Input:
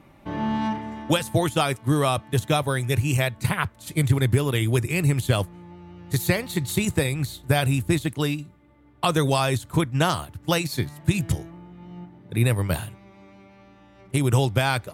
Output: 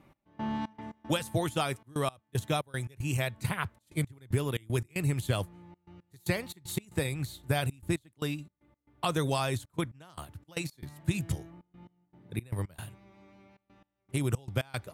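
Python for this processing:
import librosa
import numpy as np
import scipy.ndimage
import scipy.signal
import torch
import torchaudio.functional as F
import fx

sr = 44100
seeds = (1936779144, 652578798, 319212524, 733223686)

y = fx.step_gate(x, sr, bpm=115, pattern='x..xx.x.xxxxxx.', floor_db=-24.0, edge_ms=4.5)
y = F.gain(torch.from_numpy(y), -8.0).numpy()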